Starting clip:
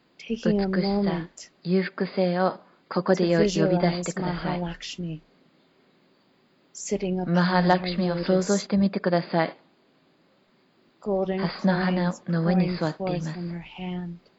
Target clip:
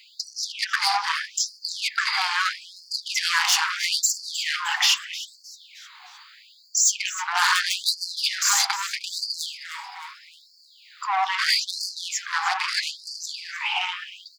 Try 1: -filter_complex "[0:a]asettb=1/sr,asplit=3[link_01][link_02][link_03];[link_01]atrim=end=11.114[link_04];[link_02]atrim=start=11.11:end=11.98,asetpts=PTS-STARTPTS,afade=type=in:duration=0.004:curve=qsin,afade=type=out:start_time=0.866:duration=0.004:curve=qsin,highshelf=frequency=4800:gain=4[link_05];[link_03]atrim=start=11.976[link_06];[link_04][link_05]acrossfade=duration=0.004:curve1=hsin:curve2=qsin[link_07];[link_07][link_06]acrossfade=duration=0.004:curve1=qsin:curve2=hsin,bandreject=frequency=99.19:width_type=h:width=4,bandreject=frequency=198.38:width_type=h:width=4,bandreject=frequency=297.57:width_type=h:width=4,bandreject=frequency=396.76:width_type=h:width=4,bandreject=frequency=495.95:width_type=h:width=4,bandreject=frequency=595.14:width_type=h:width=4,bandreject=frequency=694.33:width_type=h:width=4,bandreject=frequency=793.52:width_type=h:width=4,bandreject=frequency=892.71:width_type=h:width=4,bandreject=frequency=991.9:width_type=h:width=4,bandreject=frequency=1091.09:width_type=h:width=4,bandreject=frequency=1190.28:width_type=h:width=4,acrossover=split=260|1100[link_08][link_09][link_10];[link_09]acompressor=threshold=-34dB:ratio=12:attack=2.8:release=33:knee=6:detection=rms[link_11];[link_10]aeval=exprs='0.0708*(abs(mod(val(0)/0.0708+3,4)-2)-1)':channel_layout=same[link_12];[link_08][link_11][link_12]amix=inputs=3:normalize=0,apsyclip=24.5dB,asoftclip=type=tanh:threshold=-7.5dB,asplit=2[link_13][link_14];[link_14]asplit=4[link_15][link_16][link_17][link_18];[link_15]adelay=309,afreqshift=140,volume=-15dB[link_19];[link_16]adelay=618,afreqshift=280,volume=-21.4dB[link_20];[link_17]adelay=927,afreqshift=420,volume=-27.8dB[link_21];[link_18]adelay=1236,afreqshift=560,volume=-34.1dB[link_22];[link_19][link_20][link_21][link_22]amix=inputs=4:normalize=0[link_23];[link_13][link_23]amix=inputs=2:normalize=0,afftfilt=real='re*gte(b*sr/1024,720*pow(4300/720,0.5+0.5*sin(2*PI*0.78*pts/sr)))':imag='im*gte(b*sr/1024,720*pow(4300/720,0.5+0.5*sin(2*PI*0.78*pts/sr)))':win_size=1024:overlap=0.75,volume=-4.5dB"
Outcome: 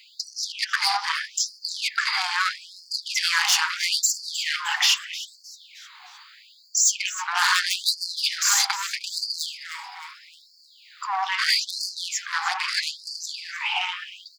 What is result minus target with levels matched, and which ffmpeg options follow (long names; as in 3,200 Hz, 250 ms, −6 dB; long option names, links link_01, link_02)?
downward compressor: peak gain reduction +9.5 dB
-filter_complex "[0:a]asettb=1/sr,asplit=3[link_01][link_02][link_03];[link_01]atrim=end=11.114[link_04];[link_02]atrim=start=11.11:end=11.98,asetpts=PTS-STARTPTS,afade=type=in:duration=0.004:curve=qsin,afade=type=out:start_time=0.866:duration=0.004:curve=qsin,highshelf=frequency=4800:gain=4[link_05];[link_03]atrim=start=11.976[link_06];[link_04][link_05]acrossfade=duration=0.004:curve1=hsin:curve2=qsin[link_07];[link_07][link_06]acrossfade=duration=0.004:curve1=qsin:curve2=hsin,bandreject=frequency=99.19:width_type=h:width=4,bandreject=frequency=198.38:width_type=h:width=4,bandreject=frequency=297.57:width_type=h:width=4,bandreject=frequency=396.76:width_type=h:width=4,bandreject=frequency=495.95:width_type=h:width=4,bandreject=frequency=595.14:width_type=h:width=4,bandreject=frequency=694.33:width_type=h:width=4,bandreject=frequency=793.52:width_type=h:width=4,bandreject=frequency=892.71:width_type=h:width=4,bandreject=frequency=991.9:width_type=h:width=4,bandreject=frequency=1091.09:width_type=h:width=4,bandreject=frequency=1190.28:width_type=h:width=4,acrossover=split=260|1100[link_08][link_09][link_10];[link_09]acompressor=threshold=-23.5dB:ratio=12:attack=2.8:release=33:knee=6:detection=rms[link_11];[link_10]aeval=exprs='0.0708*(abs(mod(val(0)/0.0708+3,4)-2)-1)':channel_layout=same[link_12];[link_08][link_11][link_12]amix=inputs=3:normalize=0,apsyclip=24.5dB,asoftclip=type=tanh:threshold=-7.5dB,asplit=2[link_13][link_14];[link_14]asplit=4[link_15][link_16][link_17][link_18];[link_15]adelay=309,afreqshift=140,volume=-15dB[link_19];[link_16]adelay=618,afreqshift=280,volume=-21.4dB[link_20];[link_17]adelay=927,afreqshift=420,volume=-27.8dB[link_21];[link_18]adelay=1236,afreqshift=560,volume=-34.1dB[link_22];[link_19][link_20][link_21][link_22]amix=inputs=4:normalize=0[link_23];[link_13][link_23]amix=inputs=2:normalize=0,afftfilt=real='re*gte(b*sr/1024,720*pow(4300/720,0.5+0.5*sin(2*PI*0.78*pts/sr)))':imag='im*gte(b*sr/1024,720*pow(4300/720,0.5+0.5*sin(2*PI*0.78*pts/sr)))':win_size=1024:overlap=0.75,volume=-4.5dB"